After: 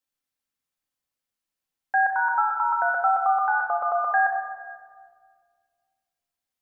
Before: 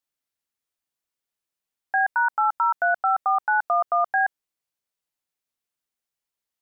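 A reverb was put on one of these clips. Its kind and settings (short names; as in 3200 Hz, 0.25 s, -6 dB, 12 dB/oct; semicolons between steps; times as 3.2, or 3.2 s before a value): shoebox room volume 2700 m³, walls mixed, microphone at 2.1 m; gain -2.5 dB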